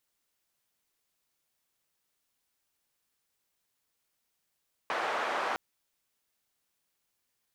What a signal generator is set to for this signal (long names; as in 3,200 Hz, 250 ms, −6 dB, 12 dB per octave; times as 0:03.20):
band-limited noise 630–1,100 Hz, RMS −32 dBFS 0.66 s